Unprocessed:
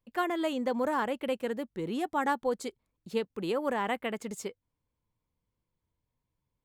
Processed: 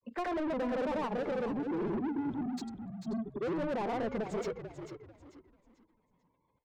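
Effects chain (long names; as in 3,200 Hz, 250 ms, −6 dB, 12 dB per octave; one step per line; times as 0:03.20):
time-frequency box erased 0:01.58–0:03.45, 420–3,200 Hz
treble cut that deepens with the level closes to 660 Hz, closed at −28.5 dBFS
gate on every frequency bin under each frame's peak −25 dB strong
granular cloud 100 ms, pitch spread up and down by 0 semitones
mid-hump overdrive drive 32 dB, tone 1,500 Hz, clips at −21.5 dBFS
echo with shifted repeats 442 ms, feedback 31%, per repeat −55 Hz, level −9 dB
level −5.5 dB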